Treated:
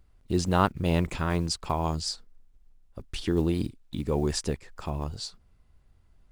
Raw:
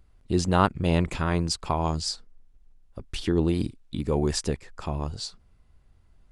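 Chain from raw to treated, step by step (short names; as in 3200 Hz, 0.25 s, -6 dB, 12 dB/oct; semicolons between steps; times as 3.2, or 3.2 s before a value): block floating point 7-bit; gain -2 dB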